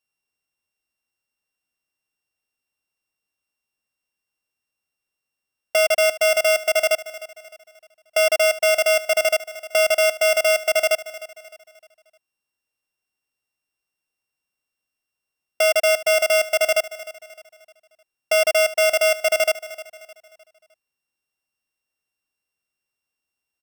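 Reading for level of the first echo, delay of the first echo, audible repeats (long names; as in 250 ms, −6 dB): −16.0 dB, 306 ms, 3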